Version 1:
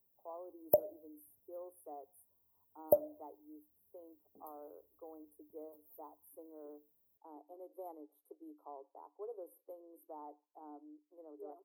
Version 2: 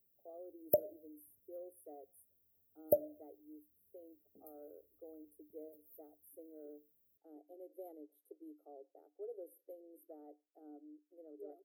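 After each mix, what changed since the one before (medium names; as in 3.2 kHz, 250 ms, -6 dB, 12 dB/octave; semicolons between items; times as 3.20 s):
master: add Butterworth band-stop 1 kHz, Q 1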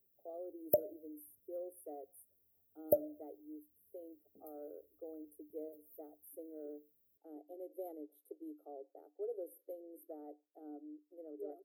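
speech +5.0 dB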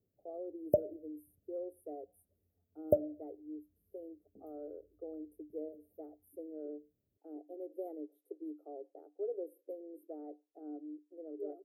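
background: add treble shelf 8.4 kHz -8.5 dB; master: add tilt EQ -3 dB/octave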